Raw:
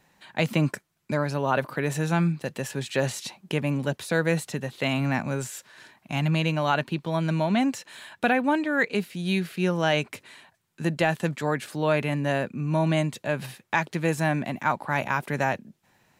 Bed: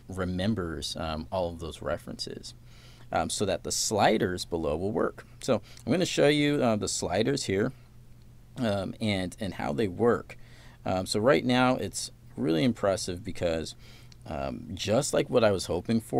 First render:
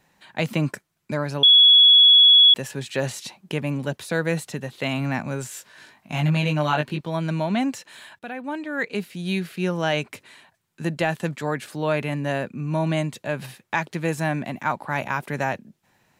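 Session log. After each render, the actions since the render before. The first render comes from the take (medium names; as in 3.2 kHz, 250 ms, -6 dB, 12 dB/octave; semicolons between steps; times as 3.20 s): 1.43–2.54 s: bleep 3.37 kHz -9 dBFS; 5.49–7.01 s: doubling 20 ms -3 dB; 8.19–9.11 s: fade in, from -16.5 dB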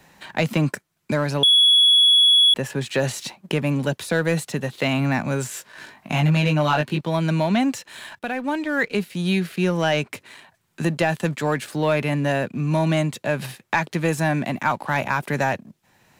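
waveshaping leveller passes 1; three bands compressed up and down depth 40%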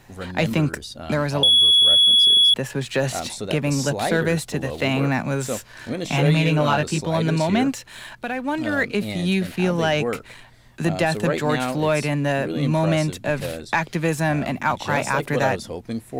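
add bed -2 dB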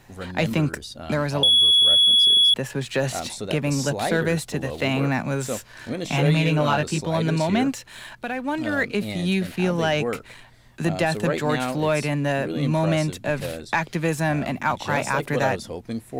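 trim -1.5 dB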